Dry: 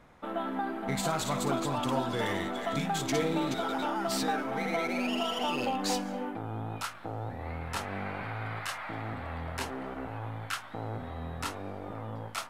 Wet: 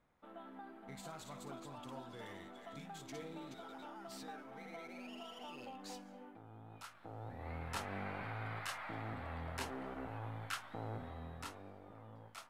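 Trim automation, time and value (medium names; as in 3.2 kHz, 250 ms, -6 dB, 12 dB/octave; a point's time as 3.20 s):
6.61 s -19 dB
7.55 s -7 dB
10.94 s -7 dB
11.85 s -16 dB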